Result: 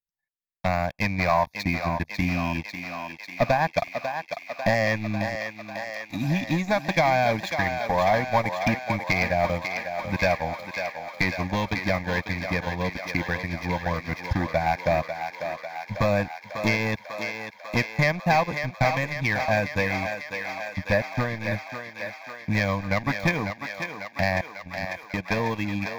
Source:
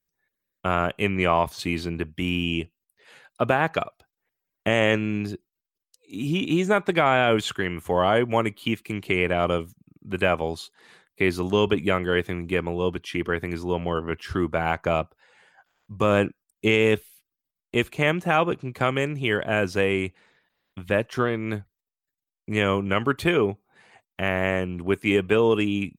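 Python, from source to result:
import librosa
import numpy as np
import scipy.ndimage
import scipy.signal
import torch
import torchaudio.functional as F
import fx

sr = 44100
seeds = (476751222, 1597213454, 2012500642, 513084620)

p1 = fx.transient(x, sr, attack_db=8, sustain_db=-7)
p2 = fx.leveller(p1, sr, passes=3)
p3 = fx.over_compress(p2, sr, threshold_db=-31.0, ratio=-0.5, at=(24.41, 25.14))
p4 = fx.fixed_phaser(p3, sr, hz=2000.0, stages=8)
p5 = p4 + fx.echo_thinned(p4, sr, ms=546, feedback_pct=77, hz=440.0, wet_db=-6.5, dry=0)
y = p5 * 10.0 ** (-9.0 / 20.0)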